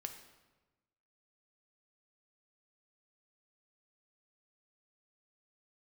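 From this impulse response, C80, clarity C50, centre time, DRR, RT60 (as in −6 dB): 10.5 dB, 8.5 dB, 19 ms, 5.5 dB, 1.2 s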